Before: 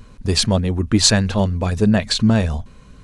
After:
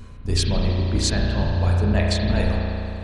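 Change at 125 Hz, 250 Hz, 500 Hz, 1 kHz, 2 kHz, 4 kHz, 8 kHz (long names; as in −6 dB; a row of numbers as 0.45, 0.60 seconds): −1.5, −7.5, −4.5, −4.0, −4.0, −8.0, −9.5 decibels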